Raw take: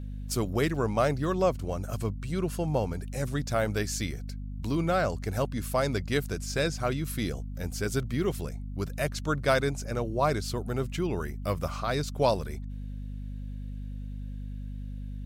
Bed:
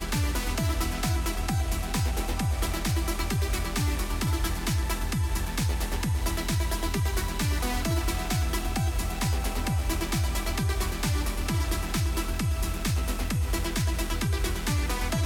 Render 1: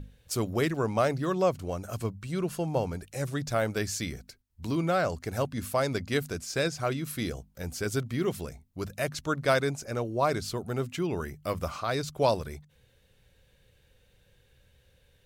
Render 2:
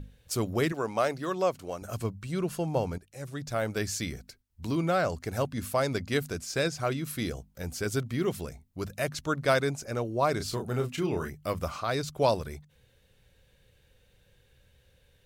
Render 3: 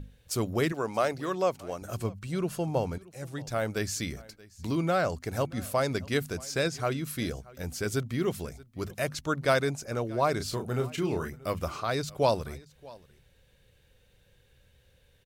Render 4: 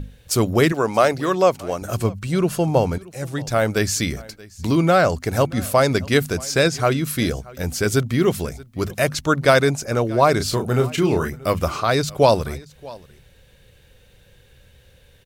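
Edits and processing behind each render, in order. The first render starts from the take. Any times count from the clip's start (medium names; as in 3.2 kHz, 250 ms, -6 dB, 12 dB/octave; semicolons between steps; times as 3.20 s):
hum notches 50/100/150/200/250 Hz
0.72–1.82 s: high-pass 370 Hz 6 dB/octave; 2.98–3.87 s: fade in, from -14.5 dB; 10.37–11.30 s: doubling 32 ms -6 dB
delay 629 ms -22.5 dB
trim +11 dB; peak limiter -3 dBFS, peak gain reduction 2 dB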